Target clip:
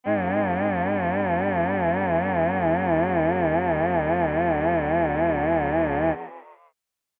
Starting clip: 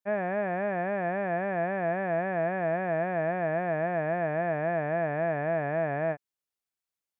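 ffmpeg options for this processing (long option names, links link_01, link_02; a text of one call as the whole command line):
ffmpeg -i in.wav -filter_complex "[0:a]asplit=3[link_01][link_02][link_03];[link_02]asetrate=22050,aresample=44100,atempo=2,volume=-5dB[link_04];[link_03]asetrate=55563,aresample=44100,atempo=0.793701,volume=-9dB[link_05];[link_01][link_04][link_05]amix=inputs=3:normalize=0,asplit=5[link_06][link_07][link_08][link_09][link_10];[link_07]adelay=140,afreqshift=92,volume=-13.5dB[link_11];[link_08]adelay=280,afreqshift=184,volume=-20.2dB[link_12];[link_09]adelay=420,afreqshift=276,volume=-27dB[link_13];[link_10]adelay=560,afreqshift=368,volume=-33.7dB[link_14];[link_06][link_11][link_12][link_13][link_14]amix=inputs=5:normalize=0,volume=4.5dB" out.wav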